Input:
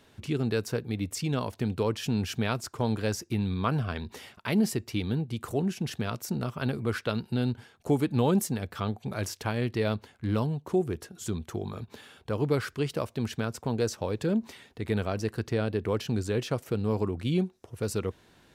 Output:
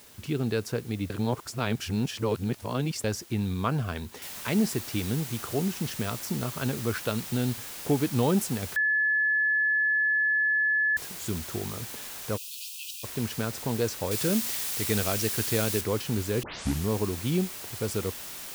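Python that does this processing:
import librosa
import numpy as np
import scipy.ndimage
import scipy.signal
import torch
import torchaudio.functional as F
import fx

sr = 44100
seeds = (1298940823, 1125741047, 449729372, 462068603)

y = fx.noise_floor_step(x, sr, seeds[0], at_s=4.22, before_db=-53, after_db=-40, tilt_db=0.0)
y = fx.brickwall_highpass(y, sr, low_hz=2400.0, at=(12.36, 13.03), fade=0.02)
y = fx.high_shelf(y, sr, hz=2100.0, db=9.0, at=(14.11, 15.81))
y = fx.edit(y, sr, fx.reverse_span(start_s=1.1, length_s=1.94),
    fx.bleep(start_s=8.76, length_s=2.21, hz=1720.0, db=-21.5),
    fx.tape_start(start_s=16.43, length_s=0.45), tone=tone)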